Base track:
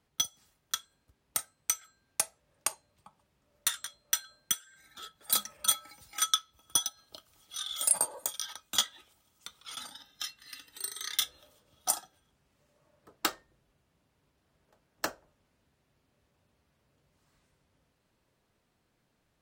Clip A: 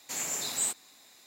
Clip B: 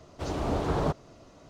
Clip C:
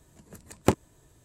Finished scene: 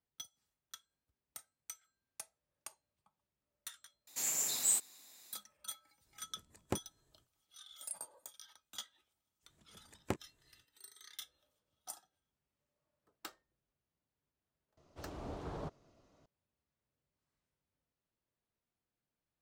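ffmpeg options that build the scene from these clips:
ffmpeg -i bed.wav -i cue0.wav -i cue1.wav -i cue2.wav -filter_complex "[3:a]asplit=2[link_01][link_02];[0:a]volume=-18.5dB[link_03];[1:a]highshelf=frequency=6100:gain=11.5[link_04];[link_02]equalizer=frequency=2000:width=1.5:gain=4.5[link_05];[link_03]asplit=2[link_06][link_07];[link_06]atrim=end=4.074[link_08];[link_04]atrim=end=1.26,asetpts=PTS-STARTPTS,volume=-8dB[link_09];[link_07]atrim=start=5.326[link_10];[link_01]atrim=end=1.24,asetpts=PTS-STARTPTS,volume=-16dB,afade=type=in:duration=0.05,afade=type=out:start_time=1.19:duration=0.05,adelay=6040[link_11];[link_05]atrim=end=1.24,asetpts=PTS-STARTPTS,volume=-16dB,afade=type=in:duration=0.05,afade=type=out:start_time=1.19:duration=0.05,adelay=9420[link_12];[2:a]atrim=end=1.49,asetpts=PTS-STARTPTS,volume=-16dB,afade=type=in:duration=0.004:curve=hsin,afade=type=out:start_time=1.486:duration=0.004:curve=hsin,adelay=14770[link_13];[link_08][link_09]acrossfade=duration=0.004:curve1=hsin:curve2=hsin[link_14];[link_14][link_10]acrossfade=duration=0.004:curve1=hsin:curve2=hsin[link_15];[link_15][link_11][link_12][link_13]amix=inputs=4:normalize=0" out.wav

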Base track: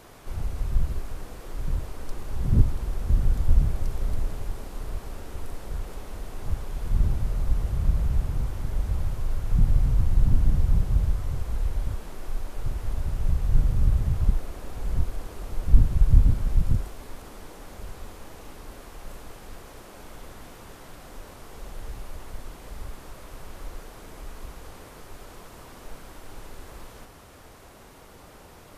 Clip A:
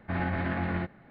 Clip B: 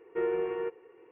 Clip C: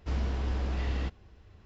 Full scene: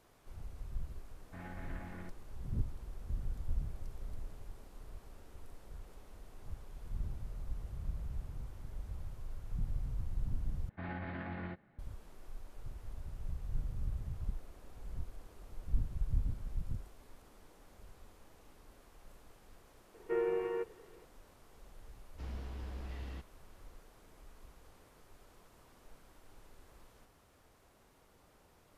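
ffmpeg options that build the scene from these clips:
ffmpeg -i bed.wav -i cue0.wav -i cue1.wav -i cue2.wav -filter_complex "[1:a]asplit=2[link_01][link_02];[0:a]volume=-17dB,asplit=2[link_03][link_04];[link_03]atrim=end=10.694[link_05];[link_02]atrim=end=1.1,asetpts=PTS-STARTPTS,volume=-12dB[link_06];[link_04]atrim=start=11.786[link_07];[link_01]atrim=end=1.1,asetpts=PTS-STARTPTS,volume=-18dB,afade=type=in:duration=0.004:curve=hsin,afade=type=out:start_time=1.096:duration=0.004:curve=hsin,adelay=1240[link_08];[2:a]atrim=end=1.11,asetpts=PTS-STARTPTS,volume=-3.5dB,afade=type=in:duration=0.004:curve=hsin,afade=type=out:start_time=1.106:duration=0.004:curve=hsin,adelay=19940[link_09];[3:a]atrim=end=1.65,asetpts=PTS-STARTPTS,volume=-13dB,afade=type=in:duration=0.004:curve=hsin,afade=type=out:start_time=1.646:duration=0.004:curve=hsin,adelay=975492S[link_10];[link_05][link_06]acrossfade=duration=0.004:curve1=hsin:curve2=hsin[link_11];[link_11][link_07]acrossfade=duration=0.004:curve1=hsin:curve2=hsin[link_12];[link_12][link_08][link_09][link_10]amix=inputs=4:normalize=0" out.wav

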